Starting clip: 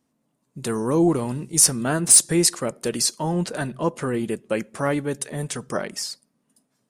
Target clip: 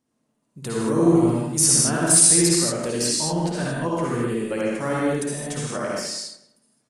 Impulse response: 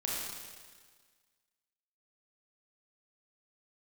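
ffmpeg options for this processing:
-filter_complex "[0:a]asplit=2[s0][s1];[s1]adelay=188,lowpass=f=2200:p=1,volume=0.188,asplit=2[s2][s3];[s3]adelay=188,lowpass=f=2200:p=1,volume=0.24,asplit=2[s4][s5];[s5]adelay=188,lowpass=f=2200:p=1,volume=0.24[s6];[s0][s2][s4][s6]amix=inputs=4:normalize=0[s7];[1:a]atrim=start_sample=2205,afade=t=out:st=0.17:d=0.01,atrim=end_sample=7938,asetrate=22932,aresample=44100[s8];[s7][s8]afir=irnorm=-1:irlink=0,volume=0.447"

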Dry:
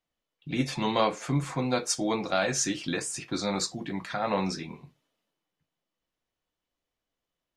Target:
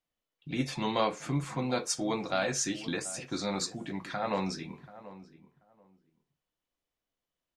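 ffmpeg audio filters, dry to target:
-filter_complex "[0:a]asplit=2[s0][s1];[s1]adelay=734,lowpass=f=1300:p=1,volume=0.168,asplit=2[s2][s3];[s3]adelay=734,lowpass=f=1300:p=1,volume=0.19[s4];[s0][s2][s4]amix=inputs=3:normalize=0,volume=0.668"

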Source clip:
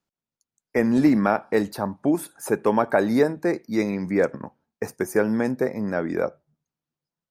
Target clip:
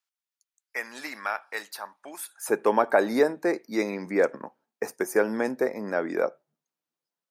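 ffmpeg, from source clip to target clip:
-af "asetnsamples=n=441:p=0,asendcmd='2.49 highpass f 340',highpass=1400"

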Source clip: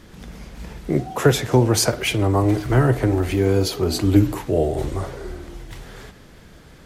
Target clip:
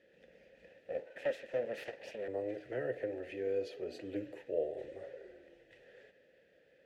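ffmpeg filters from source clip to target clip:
-filter_complex "[0:a]asettb=1/sr,asplit=3[s0][s1][s2];[s0]atrim=end=0.694[s3];[s1]atrim=start=0.69:end=2.28,asetpts=PTS-STARTPTS,afade=t=in:d=0.004:c=qsin,afade=t=out:st=1.586:d=0.004:c=qsin,aeval=exprs='abs(val(0))':c=same[s4];[s2]atrim=start=2.276[s5];[s3][s4]acrossfade=d=0.004:c1=hsin:c2=qsin[s6];[s6][s5]acrossfade=d=0.004:c1=qsin:c2=hsin,asplit=3[s7][s8][s9];[s7]bandpass=f=530:t=q:w=8,volume=1[s10];[s8]bandpass=f=1840:t=q:w=8,volume=0.501[s11];[s9]bandpass=f=2480:t=q:w=8,volume=0.355[s12];[s10][s11][s12]amix=inputs=3:normalize=0,volume=0.473"

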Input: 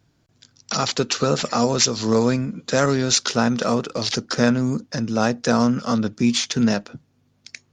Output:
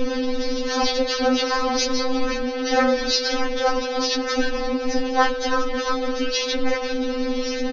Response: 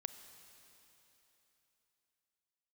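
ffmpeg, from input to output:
-filter_complex "[0:a]aeval=exprs='val(0)+0.5*0.119*sgn(val(0))':c=same,bandreject=f=331.9:t=h:w=4,bandreject=f=663.8:t=h:w=4,bandreject=f=995.7:t=h:w=4,bandreject=f=1327.6:t=h:w=4,bandreject=f=1659.5:t=h:w=4,bandreject=f=1991.4:t=h:w=4,bandreject=f=2323.3:t=h:w=4,bandreject=f=2655.2:t=h:w=4,bandreject=f=2987.1:t=h:w=4,bandreject=f=3319:t=h:w=4,bandreject=f=3650.9:t=h:w=4,bandreject=f=3982.8:t=h:w=4,bandreject=f=4314.7:t=h:w=4,bandreject=f=4646.6:t=h:w=4,bandreject=f=4978.5:t=h:w=4,bandreject=f=5310.4:t=h:w=4,bandreject=f=5642.3:t=h:w=4,bandreject=f=5974.2:t=h:w=4,bandreject=f=6306.1:t=h:w=4,bandreject=f=6638:t=h:w=4,bandreject=f=6969.9:t=h:w=4,bandreject=f=7301.8:t=h:w=4,bandreject=f=7633.7:t=h:w=4,bandreject=f=7965.6:t=h:w=4,bandreject=f=8297.5:t=h:w=4,bandreject=f=8629.4:t=h:w=4,bandreject=f=8961.3:t=h:w=4,bandreject=f=9293.2:t=h:w=4,bandreject=f=9625.1:t=h:w=4,adynamicequalizer=threshold=0.0251:dfrequency=310:dqfactor=1.9:tfrequency=310:tqfactor=1.9:attack=5:release=100:ratio=0.375:range=3.5:mode=cutabove:tftype=bell,aeval=exprs='val(0)*sin(2*PI*110*n/s)':c=same,aresample=11025,aresample=44100,asplit=2[s0][s1];[s1]asetrate=52444,aresample=44100,atempo=0.840896,volume=0.891[s2];[s0][s2]amix=inputs=2:normalize=0,aecho=1:1:527:0.15,aeval=exprs='val(0)+0.0631*sin(2*PI*500*n/s)':c=same,afftfilt=real='re*3.46*eq(mod(b,12),0)':imag='im*3.46*eq(mod(b,12),0)':win_size=2048:overlap=0.75"

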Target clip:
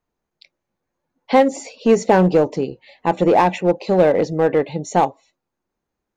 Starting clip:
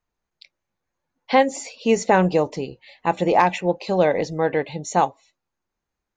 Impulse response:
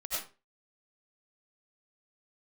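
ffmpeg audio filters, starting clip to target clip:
-filter_complex "[0:a]equalizer=f=320:w=0.4:g=8.5,asplit=2[s0][s1];[s1]aeval=exprs='0.282*(abs(mod(val(0)/0.282+3,4)-2)-1)':c=same,volume=0.282[s2];[s0][s2]amix=inputs=2:normalize=0,volume=0.668"

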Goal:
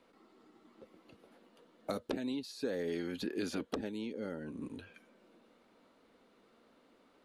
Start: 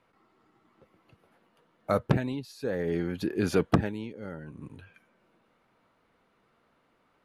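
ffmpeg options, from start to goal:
-filter_complex "[0:a]afftfilt=real='re*lt(hypot(re,im),0.447)':imag='im*lt(hypot(re,im),0.447)':win_size=1024:overlap=0.75,acrossover=split=890|2800[s0][s1][s2];[s0]acompressor=threshold=0.00891:ratio=4[s3];[s1]acompressor=threshold=0.00355:ratio=4[s4];[s2]acompressor=threshold=0.00224:ratio=4[s5];[s3][s4][s5]amix=inputs=3:normalize=0,equalizer=f=125:t=o:w=1:g=-8,equalizer=f=250:t=o:w=1:g=10,equalizer=f=500:t=o:w=1:g=6,equalizer=f=4000:t=o:w=1:g=7,equalizer=f=8000:t=o:w=1:g=6,volume=0.75"

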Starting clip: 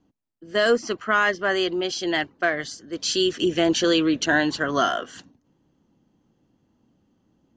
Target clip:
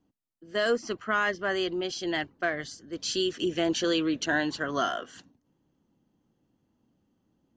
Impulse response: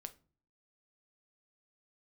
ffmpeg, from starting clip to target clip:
-filter_complex "[0:a]asettb=1/sr,asplit=3[s0][s1][s2];[s0]atrim=end=0.854[s3];[s1]atrim=start=0.85:end=3.21,asetpts=PTS-STARTPTS,afade=t=in:d=0.004:c=qsin,afade=t=out:st=2.356:d=0.004:c=qsin,lowshelf=f=150:g=7.5[s4];[s2]atrim=start=3.206[s5];[s3][s4]acrossfade=d=0.004:c1=hsin:c2=qsin[s6];[s6][s5]acrossfade=d=0.004:c1=qsin:c2=hsin,volume=0.473"

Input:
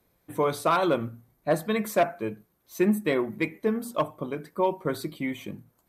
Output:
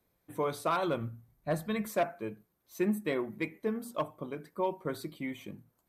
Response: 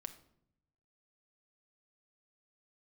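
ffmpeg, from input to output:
-filter_complex "[0:a]asplit=3[s0][s1][s2];[s0]afade=t=out:st=0.86:d=0.02[s3];[s1]asubboost=boost=5.5:cutoff=170,afade=t=in:st=0.86:d=0.02,afade=t=out:st=1.87:d=0.02[s4];[s2]afade=t=in:st=1.87:d=0.02[s5];[s3][s4][s5]amix=inputs=3:normalize=0,volume=0.447"

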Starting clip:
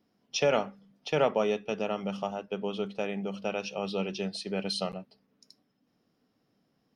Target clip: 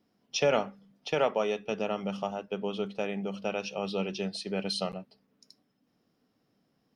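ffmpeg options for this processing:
-filter_complex "[0:a]asettb=1/sr,asplit=3[s0][s1][s2];[s0]atrim=end=1.144[s3];[s1]atrim=start=1.14:end=1.59,asetpts=PTS-STARTPTS,afade=t=in:d=0.004:c=qsin,afade=t=out:st=0.446:d=0.004:c=qsin,lowshelf=f=220:g=-9.5[s4];[s2]atrim=start=1.586[s5];[s3][s4]acrossfade=d=0.004:c1=hsin:c2=qsin[s6];[s6][s5]acrossfade=d=0.004:c1=qsin:c2=hsin"

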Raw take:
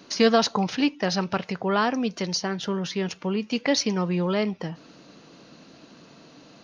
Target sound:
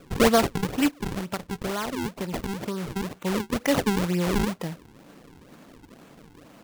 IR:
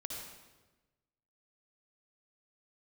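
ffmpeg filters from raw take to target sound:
-filter_complex "[0:a]acrusher=samples=42:mix=1:aa=0.000001:lfo=1:lforange=67.2:lforate=2.1,asplit=3[s0][s1][s2];[s0]afade=t=out:st=0.9:d=0.02[s3];[s1]acompressor=threshold=0.0447:ratio=4,afade=t=in:st=0.9:d=0.02,afade=t=out:st=3.22:d=0.02[s4];[s2]afade=t=in:st=3.22:d=0.02[s5];[s3][s4][s5]amix=inputs=3:normalize=0"

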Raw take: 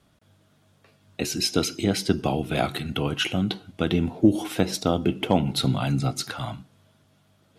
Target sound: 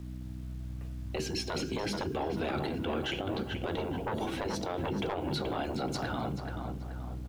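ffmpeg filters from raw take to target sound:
-filter_complex "[0:a]aemphasis=mode=reproduction:type=riaa,aeval=exprs='val(0)+0.0158*(sin(2*PI*60*n/s)+sin(2*PI*2*60*n/s)/2+sin(2*PI*3*60*n/s)/3+sin(2*PI*4*60*n/s)/4+sin(2*PI*5*60*n/s)/5)':c=same,acrossover=split=160|5300[s0][s1][s2];[s0]acompressor=threshold=0.0251:ratio=6[s3];[s1]asoftclip=type=tanh:threshold=0.188[s4];[s3][s4][s2]amix=inputs=3:normalize=0,asetrate=45938,aresample=44100,afftfilt=real='re*lt(hypot(re,im),0.355)':imag='im*lt(hypot(re,im),0.355)':win_size=1024:overlap=0.75,lowshelf=f=81:g=-5,acrusher=bits=9:mix=0:aa=0.000001,asplit=2[s5][s6];[s6]adelay=430,lowpass=f=2400:p=1,volume=0.447,asplit=2[s7][s8];[s8]adelay=430,lowpass=f=2400:p=1,volume=0.48,asplit=2[s9][s10];[s10]adelay=430,lowpass=f=2400:p=1,volume=0.48,asplit=2[s11][s12];[s12]adelay=430,lowpass=f=2400:p=1,volume=0.48,asplit=2[s13][s14];[s14]adelay=430,lowpass=f=2400:p=1,volume=0.48,asplit=2[s15][s16];[s16]adelay=430,lowpass=f=2400:p=1,volume=0.48[s17];[s5][s7][s9][s11][s13][s15][s17]amix=inputs=7:normalize=0,alimiter=limit=0.0668:level=0:latency=1:release=26,volume=0.891"

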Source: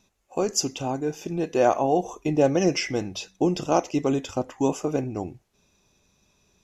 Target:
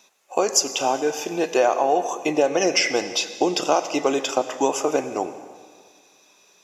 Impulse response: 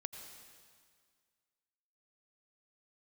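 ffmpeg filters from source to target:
-filter_complex "[0:a]highpass=530,acompressor=threshold=0.0501:ratio=6,asplit=2[s0][s1];[1:a]atrim=start_sample=2205[s2];[s1][s2]afir=irnorm=-1:irlink=0,volume=1.19[s3];[s0][s3]amix=inputs=2:normalize=0,volume=2"

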